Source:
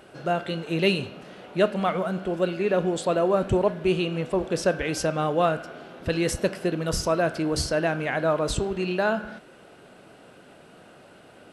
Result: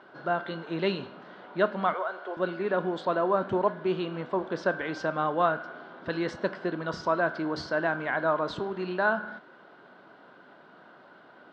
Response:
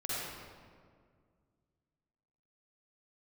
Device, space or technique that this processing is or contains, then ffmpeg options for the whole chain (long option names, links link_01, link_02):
kitchen radio: -filter_complex "[0:a]highpass=200,equalizer=frequency=480:width_type=q:width=4:gain=-4,equalizer=frequency=1000:width_type=q:width=4:gain=8,equalizer=frequency=1500:width_type=q:width=4:gain=6,equalizer=frequency=2600:width_type=q:width=4:gain=-10,lowpass=frequency=4100:width=0.5412,lowpass=frequency=4100:width=1.3066,asettb=1/sr,asplit=3[link_01][link_02][link_03];[link_01]atrim=end=1.944[link_04];[link_02]atrim=start=1.94:end=2.37,asetpts=PTS-STARTPTS,afade=type=in:duration=0.004:curve=qsin,afade=type=out:start_time=0.426:duration=0.004:curve=qsin,highpass=frequency=420:width=0.5412,highpass=frequency=420:width=1.3066[link_05];[link_03]atrim=start=2.366[link_06];[link_04][link_05]acrossfade=duration=0.004:curve1=hsin:curve2=qsin[link_07];[link_07][link_06]acrossfade=duration=0.004:curve1=qsin:curve2=hsin,volume=-3.5dB"